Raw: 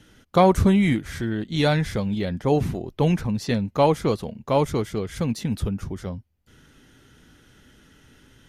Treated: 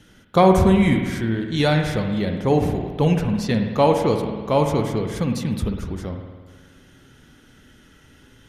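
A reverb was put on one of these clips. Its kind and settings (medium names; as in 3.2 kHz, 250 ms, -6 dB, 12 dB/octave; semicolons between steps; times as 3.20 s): spring tank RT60 1.5 s, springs 53 ms, chirp 55 ms, DRR 4.5 dB; trim +1.5 dB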